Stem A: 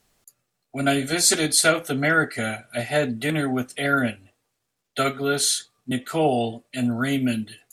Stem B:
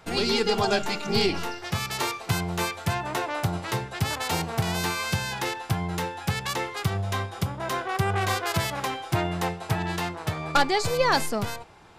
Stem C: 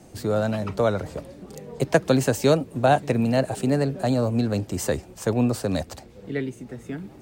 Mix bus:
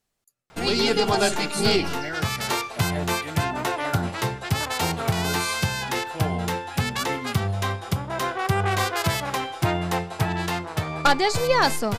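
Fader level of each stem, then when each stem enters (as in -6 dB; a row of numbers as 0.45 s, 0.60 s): -12.5 dB, +2.5 dB, mute; 0.00 s, 0.50 s, mute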